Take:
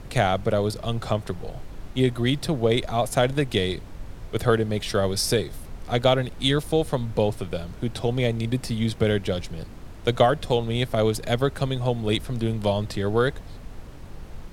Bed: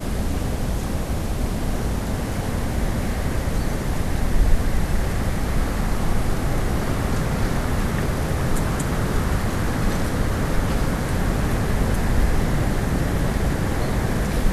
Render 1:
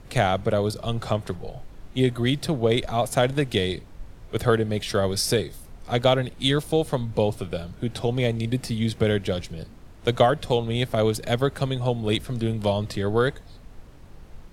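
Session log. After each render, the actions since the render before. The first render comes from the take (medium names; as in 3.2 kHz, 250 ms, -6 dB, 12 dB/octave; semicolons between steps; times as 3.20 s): noise print and reduce 6 dB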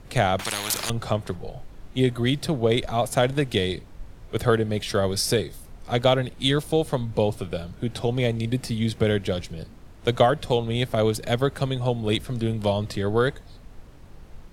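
0.39–0.90 s: spectrum-flattening compressor 10:1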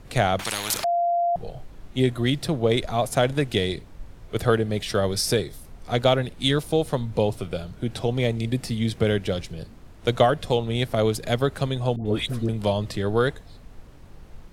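0.84–1.36 s: bleep 692 Hz -19 dBFS; 11.96–12.49 s: phase dispersion highs, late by 99 ms, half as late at 1 kHz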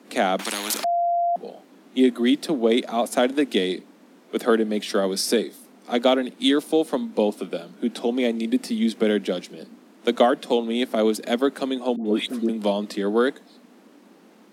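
steep high-pass 190 Hz 72 dB/octave; peaking EQ 270 Hz +7 dB 0.81 oct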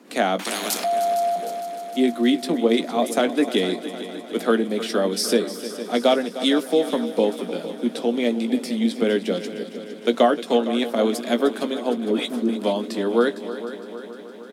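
doubling 17 ms -10 dB; multi-head delay 153 ms, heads second and third, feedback 63%, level -14 dB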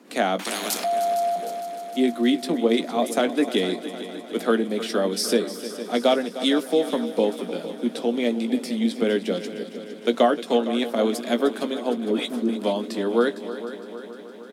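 trim -1.5 dB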